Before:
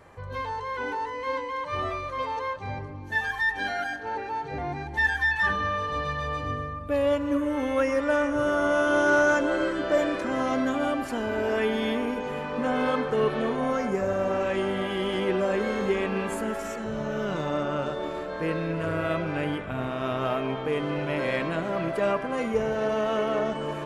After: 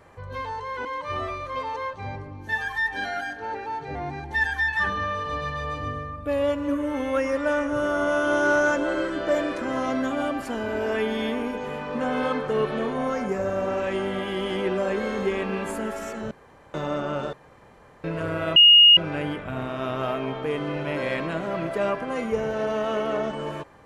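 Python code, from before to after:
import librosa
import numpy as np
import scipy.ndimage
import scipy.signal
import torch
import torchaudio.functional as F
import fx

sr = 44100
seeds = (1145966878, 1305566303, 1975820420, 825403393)

y = fx.edit(x, sr, fx.cut(start_s=0.85, length_s=0.63),
    fx.room_tone_fill(start_s=16.94, length_s=0.43),
    fx.room_tone_fill(start_s=17.96, length_s=0.71),
    fx.insert_tone(at_s=19.19, length_s=0.41, hz=2860.0, db=-9.0), tone=tone)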